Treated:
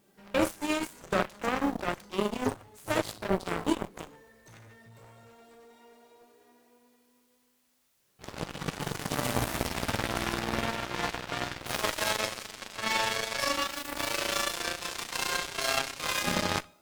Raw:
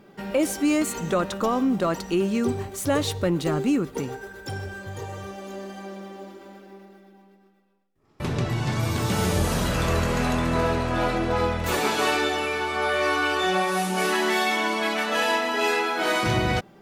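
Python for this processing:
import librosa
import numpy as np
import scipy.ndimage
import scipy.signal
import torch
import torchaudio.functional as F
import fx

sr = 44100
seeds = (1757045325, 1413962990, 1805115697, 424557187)

p1 = fx.pitch_glide(x, sr, semitones=9.0, runs='starting unshifted')
p2 = fx.quant_dither(p1, sr, seeds[0], bits=8, dither='triangular')
p3 = p1 + (p2 * librosa.db_to_amplitude(-4.0))
p4 = fx.rev_schroeder(p3, sr, rt60_s=0.42, comb_ms=28, drr_db=5.0)
p5 = fx.cheby_harmonics(p4, sr, harmonics=(2, 3, 7), levels_db=(-15, -16, -20), full_scale_db=-5.0)
y = p5 * librosa.db_to_amplitude(-5.5)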